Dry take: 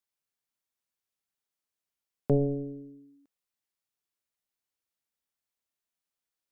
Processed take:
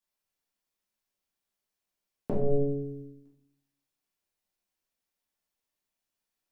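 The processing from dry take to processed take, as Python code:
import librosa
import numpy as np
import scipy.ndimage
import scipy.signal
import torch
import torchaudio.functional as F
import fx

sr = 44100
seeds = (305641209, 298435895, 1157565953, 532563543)

y = fx.over_compress(x, sr, threshold_db=-29.0, ratio=-1.0, at=(2.3, 3.05))
y = fx.room_shoebox(y, sr, seeds[0], volume_m3=110.0, walls='mixed', distance_m=1.6)
y = y * librosa.db_to_amplitude(-3.5)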